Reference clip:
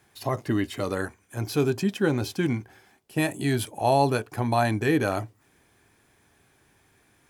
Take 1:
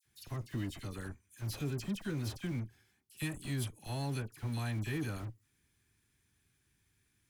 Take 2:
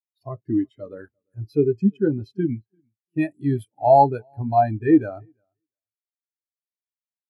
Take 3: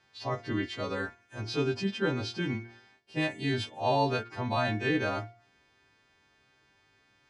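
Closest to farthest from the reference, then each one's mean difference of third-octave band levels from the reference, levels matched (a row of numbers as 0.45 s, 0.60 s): 3, 1, 2; 5.5 dB, 7.5 dB, 17.0 dB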